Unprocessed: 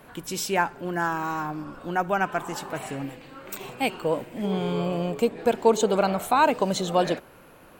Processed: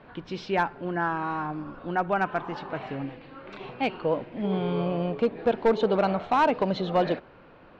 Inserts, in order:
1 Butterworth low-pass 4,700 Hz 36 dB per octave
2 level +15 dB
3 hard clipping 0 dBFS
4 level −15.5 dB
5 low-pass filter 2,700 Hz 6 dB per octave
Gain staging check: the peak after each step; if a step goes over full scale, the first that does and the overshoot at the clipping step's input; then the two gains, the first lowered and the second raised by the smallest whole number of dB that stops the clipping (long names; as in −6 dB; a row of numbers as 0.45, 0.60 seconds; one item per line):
−6.5, +8.5, 0.0, −15.5, −15.5 dBFS
step 2, 8.5 dB
step 2 +6 dB, step 4 −6.5 dB